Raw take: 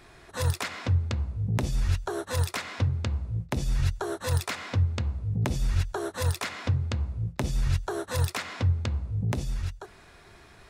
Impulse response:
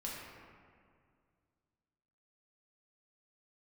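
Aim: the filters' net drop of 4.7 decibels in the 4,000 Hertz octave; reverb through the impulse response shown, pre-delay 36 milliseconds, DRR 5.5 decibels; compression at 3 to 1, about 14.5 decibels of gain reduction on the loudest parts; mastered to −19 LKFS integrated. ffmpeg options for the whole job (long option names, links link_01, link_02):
-filter_complex "[0:a]equalizer=frequency=4000:width_type=o:gain=-6,acompressor=threshold=-41dB:ratio=3,asplit=2[link_01][link_02];[1:a]atrim=start_sample=2205,adelay=36[link_03];[link_02][link_03]afir=irnorm=-1:irlink=0,volume=-6.5dB[link_04];[link_01][link_04]amix=inputs=2:normalize=0,volume=21.5dB"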